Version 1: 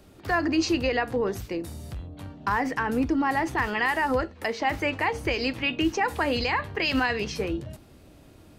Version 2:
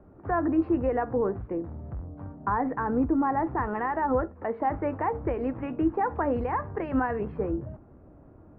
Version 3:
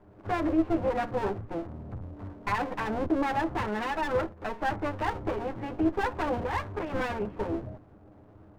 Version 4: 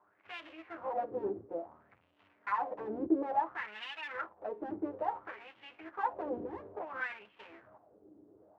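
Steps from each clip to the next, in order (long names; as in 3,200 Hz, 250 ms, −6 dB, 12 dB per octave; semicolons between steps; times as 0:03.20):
inverse Chebyshev low-pass filter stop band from 7,200 Hz, stop band 80 dB
lower of the sound and its delayed copy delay 9.7 ms
LFO wah 0.58 Hz 330–3,000 Hz, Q 4; level +2 dB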